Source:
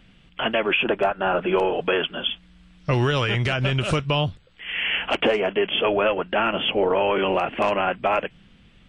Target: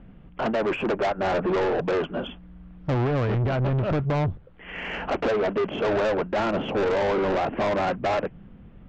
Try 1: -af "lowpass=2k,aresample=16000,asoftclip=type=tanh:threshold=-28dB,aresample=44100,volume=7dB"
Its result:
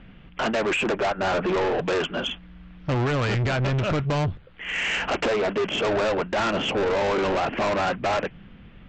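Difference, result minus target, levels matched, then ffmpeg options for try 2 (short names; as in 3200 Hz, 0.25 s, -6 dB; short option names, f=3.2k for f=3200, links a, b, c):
2000 Hz band +4.0 dB
-af "lowpass=920,aresample=16000,asoftclip=type=tanh:threshold=-28dB,aresample=44100,volume=7dB"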